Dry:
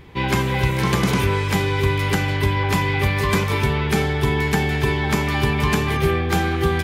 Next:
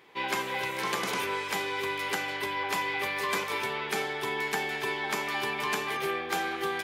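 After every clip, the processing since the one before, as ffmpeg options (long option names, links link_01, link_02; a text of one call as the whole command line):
ffmpeg -i in.wav -af "highpass=470,volume=-6.5dB" out.wav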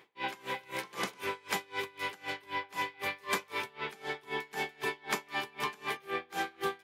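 ffmpeg -i in.wav -af "aeval=exprs='val(0)*pow(10,-27*(0.5-0.5*cos(2*PI*3.9*n/s))/20)':channel_layout=same" out.wav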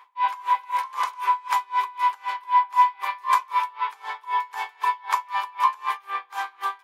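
ffmpeg -i in.wav -af "highpass=frequency=1000:width_type=q:width=11" out.wav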